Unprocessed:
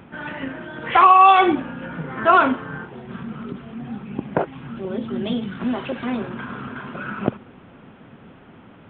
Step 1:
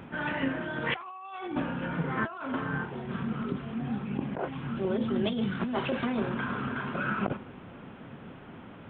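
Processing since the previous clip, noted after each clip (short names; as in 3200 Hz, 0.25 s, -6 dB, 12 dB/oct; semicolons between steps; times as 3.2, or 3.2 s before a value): reverb, pre-delay 23 ms, DRR 11.5 dB; negative-ratio compressor -26 dBFS, ratio -1; gain -6 dB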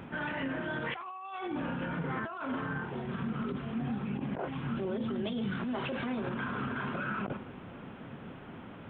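limiter -26.5 dBFS, peak gain reduction 10.5 dB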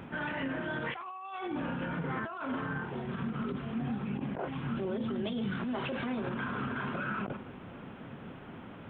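ending taper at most 160 dB/s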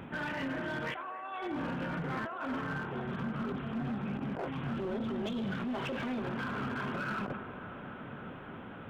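hard clip -31.5 dBFS, distortion -16 dB; on a send: band-limited delay 0.274 s, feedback 84%, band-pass 860 Hz, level -12 dB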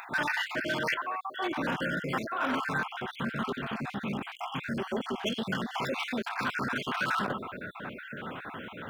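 random spectral dropouts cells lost 43%; tilt +2.5 dB/oct; gain +8.5 dB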